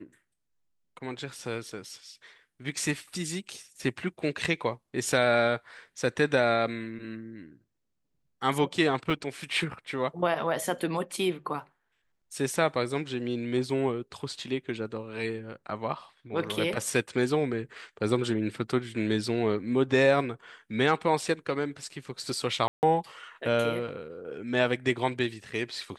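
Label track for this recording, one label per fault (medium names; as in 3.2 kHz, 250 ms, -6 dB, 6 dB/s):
9.100000	9.100000	dropout 3.4 ms
22.680000	22.830000	dropout 149 ms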